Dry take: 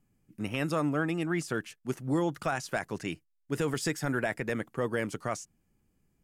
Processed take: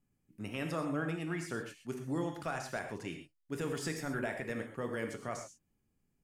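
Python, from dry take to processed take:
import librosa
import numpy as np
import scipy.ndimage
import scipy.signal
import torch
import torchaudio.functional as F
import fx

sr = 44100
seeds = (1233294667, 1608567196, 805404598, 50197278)

y = fx.rev_gated(x, sr, seeds[0], gate_ms=150, shape='flat', drr_db=4.0)
y = y * librosa.db_to_amplitude(-7.5)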